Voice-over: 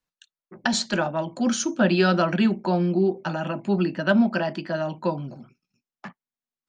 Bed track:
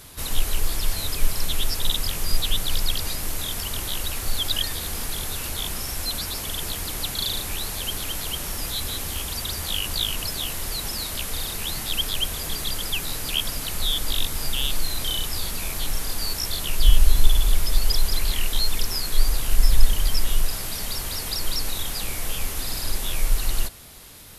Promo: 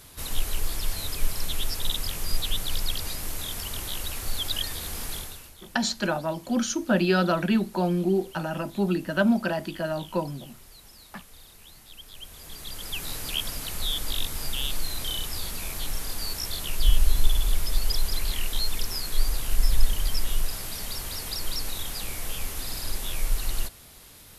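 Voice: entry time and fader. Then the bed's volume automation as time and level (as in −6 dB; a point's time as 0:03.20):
5.10 s, −2.5 dB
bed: 0:05.16 −4.5 dB
0:05.56 −21 dB
0:12.01 −21 dB
0:13.08 −4.5 dB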